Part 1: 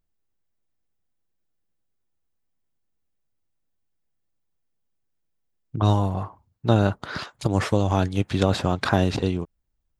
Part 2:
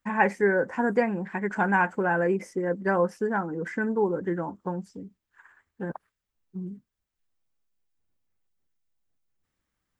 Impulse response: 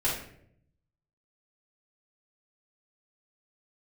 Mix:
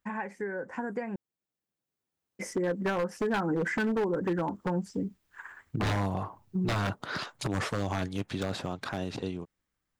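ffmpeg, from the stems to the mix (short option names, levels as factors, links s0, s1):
-filter_complex "[0:a]highpass=120,volume=0.335[s0];[1:a]acompressor=threshold=0.0398:ratio=12,volume=0.668,asplit=3[s1][s2][s3];[s1]atrim=end=1.16,asetpts=PTS-STARTPTS,afade=t=out:st=1.156:d=0.004:c=hsin[s4];[s2]atrim=start=1.16:end=2.39,asetpts=PTS-STARTPTS,volume=0[s5];[s3]atrim=start=2.39,asetpts=PTS-STARTPTS,afade=t=in:d=0.004:c=hsin[s6];[s4][s5][s6]concat=n=3:v=0:a=1[s7];[s0][s7]amix=inputs=2:normalize=0,dynaudnorm=f=360:g=13:m=6.31,aeval=exprs='0.158*(abs(mod(val(0)/0.158+3,4)-2)-1)':c=same,alimiter=limit=0.075:level=0:latency=1:release=270"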